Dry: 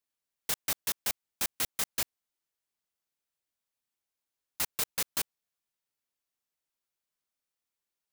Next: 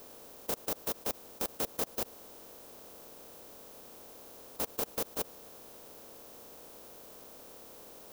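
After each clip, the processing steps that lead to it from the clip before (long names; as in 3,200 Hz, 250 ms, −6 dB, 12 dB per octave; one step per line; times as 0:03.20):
compressor on every frequency bin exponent 0.4
graphic EQ with 10 bands 125 Hz −4 dB, 250 Hz +4 dB, 500 Hz +9 dB, 2,000 Hz −11 dB, 4,000 Hz −6 dB, 8,000 Hz −7 dB, 16,000 Hz −5 dB
brickwall limiter −24 dBFS, peak gain reduction 9 dB
level +2.5 dB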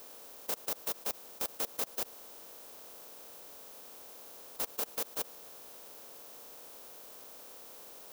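low-shelf EQ 490 Hz −10.5 dB
soft clipping −27 dBFS, distortion −16 dB
level +2 dB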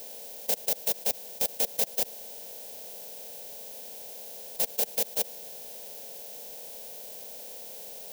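phaser with its sweep stopped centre 320 Hz, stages 6
level +8.5 dB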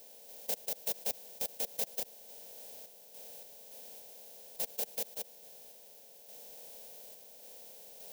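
sample-and-hold tremolo
level −6.5 dB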